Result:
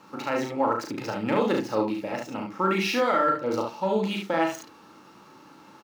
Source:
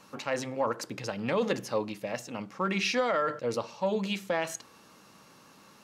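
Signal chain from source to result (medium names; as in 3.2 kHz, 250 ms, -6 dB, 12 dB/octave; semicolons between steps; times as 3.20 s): median filter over 5 samples; high-pass 47 Hz; small resonant body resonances 320/870/1300 Hz, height 10 dB, ringing for 35 ms; on a send: early reflections 37 ms -4 dB, 71 ms -4.5 dB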